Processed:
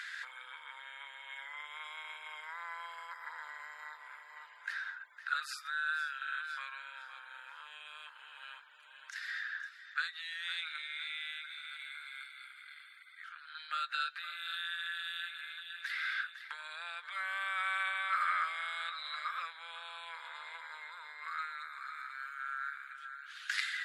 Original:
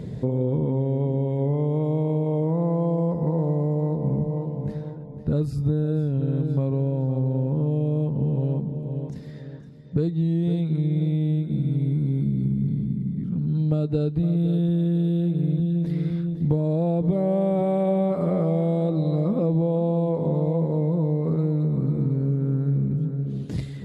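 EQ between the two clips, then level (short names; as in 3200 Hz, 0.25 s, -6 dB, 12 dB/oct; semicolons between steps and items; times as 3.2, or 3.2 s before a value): Chebyshev high-pass 1300 Hz, order 5; LPF 2900 Hz 6 dB/oct; bell 1600 Hz +12.5 dB 0.27 oct; +15.0 dB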